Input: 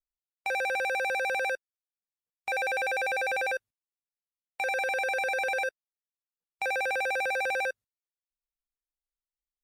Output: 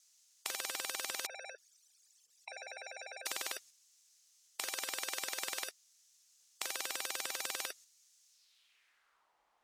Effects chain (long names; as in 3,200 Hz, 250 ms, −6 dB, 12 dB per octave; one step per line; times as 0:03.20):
0:01.26–0:03.26: spectral envelope exaggerated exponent 3
band-pass filter sweep 6,300 Hz → 880 Hz, 0:08.29–0:09.30
every bin compressed towards the loudest bin 10 to 1
level +17 dB